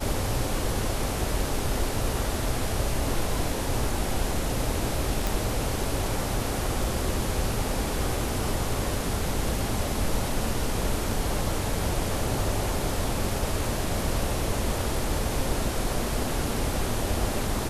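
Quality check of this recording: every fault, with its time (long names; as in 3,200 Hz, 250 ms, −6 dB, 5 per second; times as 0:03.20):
0:05.27: click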